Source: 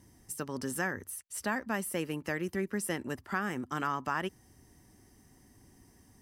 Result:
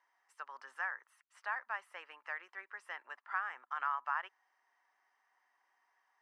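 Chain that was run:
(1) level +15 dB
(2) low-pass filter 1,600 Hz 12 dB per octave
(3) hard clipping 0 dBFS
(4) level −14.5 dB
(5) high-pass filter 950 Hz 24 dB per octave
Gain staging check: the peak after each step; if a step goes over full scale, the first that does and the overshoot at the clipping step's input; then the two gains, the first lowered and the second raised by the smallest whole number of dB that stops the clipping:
−2.5, −4.0, −4.0, −18.5, −22.5 dBFS
no step passes full scale

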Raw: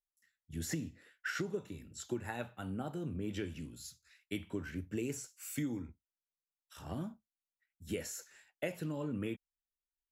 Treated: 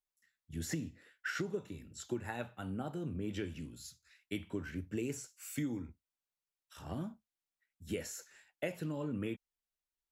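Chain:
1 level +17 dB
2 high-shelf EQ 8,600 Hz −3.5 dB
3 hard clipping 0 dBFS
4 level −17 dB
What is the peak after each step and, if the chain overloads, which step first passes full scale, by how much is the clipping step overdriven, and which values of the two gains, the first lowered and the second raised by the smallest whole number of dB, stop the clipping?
−6.0, −6.0, −6.0, −23.0 dBFS
no step passes full scale

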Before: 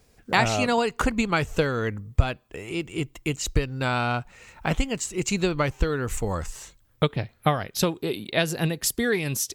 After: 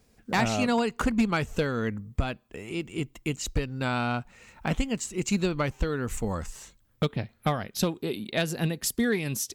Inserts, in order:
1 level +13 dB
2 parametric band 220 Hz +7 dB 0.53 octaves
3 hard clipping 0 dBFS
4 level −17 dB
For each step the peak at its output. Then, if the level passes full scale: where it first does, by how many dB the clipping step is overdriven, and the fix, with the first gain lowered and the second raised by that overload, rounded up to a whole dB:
+8.0, +8.5, 0.0, −17.0 dBFS
step 1, 8.5 dB
step 1 +4 dB, step 4 −8 dB

